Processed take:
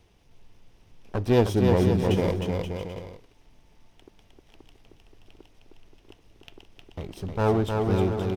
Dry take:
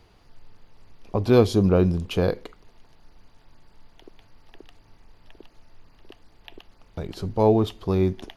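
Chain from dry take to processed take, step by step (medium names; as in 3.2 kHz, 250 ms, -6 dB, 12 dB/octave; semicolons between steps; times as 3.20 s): comb filter that takes the minimum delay 0.34 ms; bouncing-ball echo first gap 310 ms, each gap 0.7×, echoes 5; trim -3.5 dB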